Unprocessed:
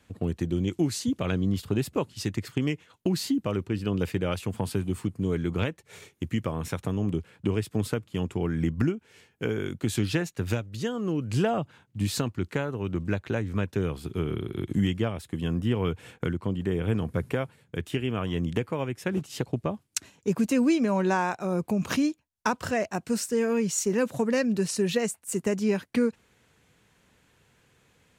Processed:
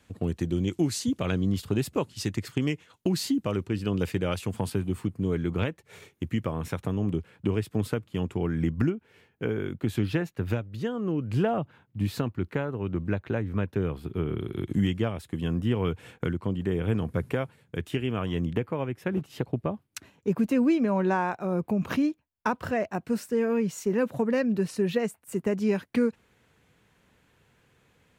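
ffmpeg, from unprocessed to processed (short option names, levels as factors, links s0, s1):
-af "asetnsamples=n=441:p=0,asendcmd='4.7 equalizer g -5.5;8.9 equalizer g -13.5;14.39 equalizer g -3.5;18.47 equalizer g -13;25.6 equalizer g -5.5',equalizer=f=7200:t=o:w=1.8:g=1"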